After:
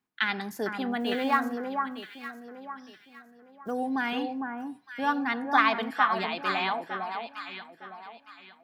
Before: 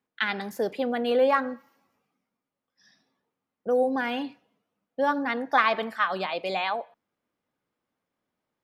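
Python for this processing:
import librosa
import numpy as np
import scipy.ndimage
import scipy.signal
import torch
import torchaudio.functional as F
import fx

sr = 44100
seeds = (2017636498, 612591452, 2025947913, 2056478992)

y = fx.block_float(x, sr, bits=7, at=(0.99, 3.7), fade=0.02)
y = fx.peak_eq(y, sr, hz=530.0, db=-15.0, octaves=0.37)
y = fx.echo_alternate(y, sr, ms=455, hz=1500.0, feedback_pct=55, wet_db=-4)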